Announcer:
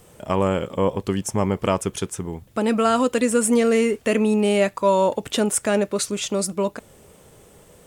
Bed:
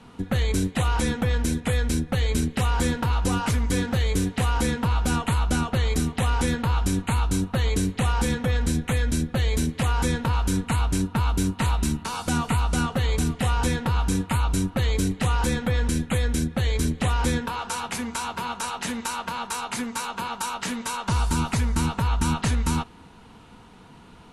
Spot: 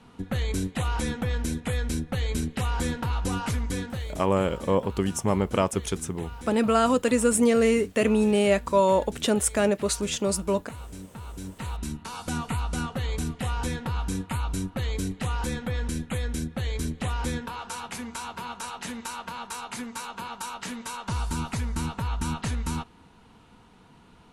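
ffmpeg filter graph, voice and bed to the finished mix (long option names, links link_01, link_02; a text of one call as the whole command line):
ffmpeg -i stem1.wav -i stem2.wav -filter_complex "[0:a]adelay=3900,volume=-2.5dB[link_01];[1:a]volume=7dB,afade=type=out:start_time=3.58:duration=0.69:silence=0.223872,afade=type=in:start_time=11.26:duration=0.98:silence=0.266073[link_02];[link_01][link_02]amix=inputs=2:normalize=0" out.wav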